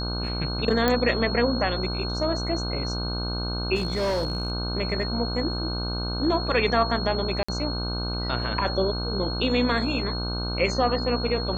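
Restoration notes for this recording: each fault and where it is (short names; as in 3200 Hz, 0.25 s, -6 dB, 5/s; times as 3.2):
buzz 60 Hz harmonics 26 -30 dBFS
tone 4300 Hz -32 dBFS
0.88 pop -8 dBFS
3.75–4.52 clipped -21.5 dBFS
7.43–7.49 gap 55 ms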